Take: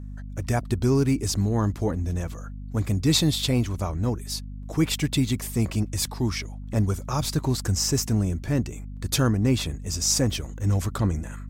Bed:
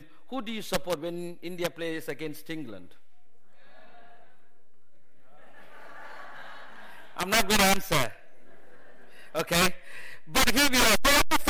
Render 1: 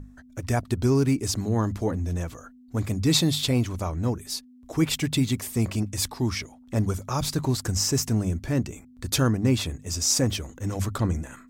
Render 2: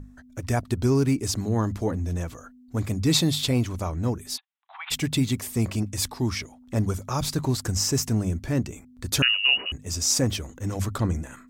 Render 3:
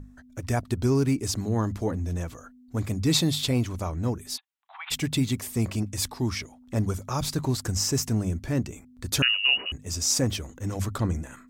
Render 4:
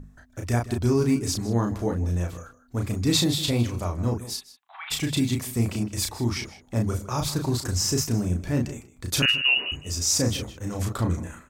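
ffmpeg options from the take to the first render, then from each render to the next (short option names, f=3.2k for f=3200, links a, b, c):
-af "bandreject=f=50:t=h:w=6,bandreject=f=100:t=h:w=6,bandreject=f=150:t=h:w=6,bandreject=f=200:t=h:w=6"
-filter_complex "[0:a]asplit=3[a][b][c];[a]afade=t=out:st=4.36:d=0.02[d];[b]asuperpass=centerf=1700:order=20:qfactor=0.55,afade=t=in:st=4.36:d=0.02,afade=t=out:st=4.9:d=0.02[e];[c]afade=t=in:st=4.9:d=0.02[f];[d][e][f]amix=inputs=3:normalize=0,asettb=1/sr,asplit=3[g][h][i];[g]atrim=end=9.224[j];[h]atrim=start=9.22:end=9.72,asetpts=PTS-STARTPTS,afade=t=in:d=0.004:c=qsin,afade=t=out:st=0.496:d=0.004:c=qsin,lowpass=f=2.6k:t=q:w=0.5098,lowpass=f=2.6k:t=q:w=0.6013,lowpass=f=2.6k:t=q:w=0.9,lowpass=f=2.6k:t=q:w=2.563,afreqshift=-3000[k];[i]atrim=start=9.716[l];[j][k]acrossfade=d=0.004:c1=hsin:c2=qsin[m];[m][l]acrossfade=d=0.004:c1=qsin:c2=hsin"
-af "volume=-1.5dB"
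-filter_complex "[0:a]asplit=2[a][b];[b]adelay=34,volume=-4dB[c];[a][c]amix=inputs=2:normalize=0,asplit=2[d][e];[e]adelay=157.4,volume=-15dB,highshelf=f=4k:g=-3.54[f];[d][f]amix=inputs=2:normalize=0"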